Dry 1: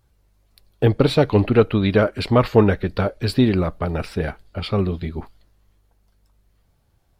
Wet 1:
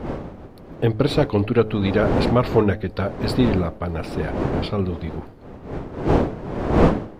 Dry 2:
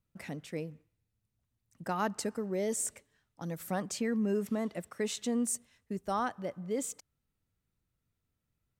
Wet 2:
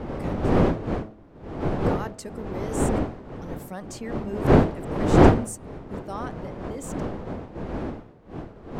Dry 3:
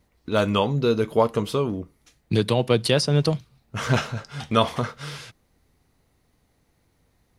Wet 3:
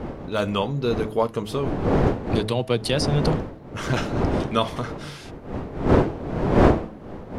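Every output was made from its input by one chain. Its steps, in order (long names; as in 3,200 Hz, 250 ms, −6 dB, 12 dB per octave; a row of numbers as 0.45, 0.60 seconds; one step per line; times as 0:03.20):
wind on the microphone 420 Hz −22 dBFS
hum removal 107.8 Hz, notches 7
level −2.5 dB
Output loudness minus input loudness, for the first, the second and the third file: −1.5, +10.5, 0.0 LU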